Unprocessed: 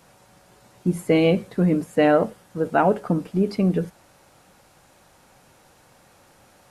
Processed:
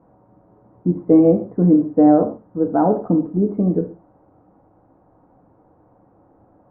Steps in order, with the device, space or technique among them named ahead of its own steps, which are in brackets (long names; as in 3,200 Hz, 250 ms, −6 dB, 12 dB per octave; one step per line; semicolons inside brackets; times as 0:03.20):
under water (low-pass filter 1,000 Hz 24 dB per octave; parametric band 290 Hz +10 dB 0.4 octaves)
reverb whose tail is shaped and stops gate 160 ms falling, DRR 4.5 dB